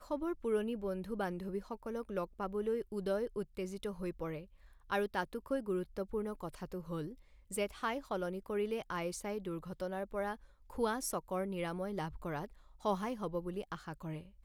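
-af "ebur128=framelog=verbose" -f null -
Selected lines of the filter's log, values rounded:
Integrated loudness:
  I:         -39.2 LUFS
  Threshold: -49.3 LUFS
Loudness range:
  LRA:         1.2 LU
  Threshold: -59.3 LUFS
  LRA low:   -39.9 LUFS
  LRA high:  -38.7 LUFS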